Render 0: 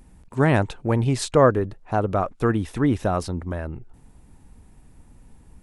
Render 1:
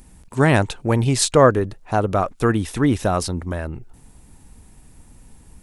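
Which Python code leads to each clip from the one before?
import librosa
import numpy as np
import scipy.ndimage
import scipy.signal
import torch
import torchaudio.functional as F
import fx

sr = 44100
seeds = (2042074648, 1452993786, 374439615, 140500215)

y = fx.high_shelf(x, sr, hz=3200.0, db=9.5)
y = y * librosa.db_to_amplitude(2.5)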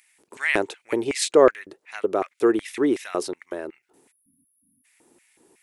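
y = fx.filter_lfo_highpass(x, sr, shape='square', hz=2.7, low_hz=370.0, high_hz=2100.0, q=4.4)
y = fx.spec_erase(y, sr, start_s=4.11, length_s=0.74, low_hz=290.0, high_hz=9400.0)
y = y * librosa.db_to_amplitude(-7.0)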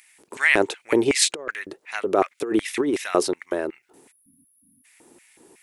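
y = fx.over_compress(x, sr, threshold_db=-22.0, ratio=-0.5)
y = y * librosa.db_to_amplitude(3.0)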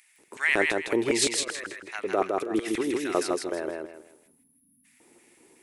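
y = fx.echo_feedback(x, sr, ms=160, feedback_pct=29, wet_db=-3)
y = y * librosa.db_to_amplitude(-6.0)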